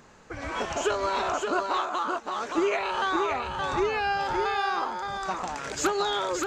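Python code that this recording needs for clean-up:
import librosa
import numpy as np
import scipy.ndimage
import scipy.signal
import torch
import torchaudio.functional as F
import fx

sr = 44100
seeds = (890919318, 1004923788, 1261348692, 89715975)

y = fx.fix_echo_inverse(x, sr, delay_ms=571, level_db=-4.5)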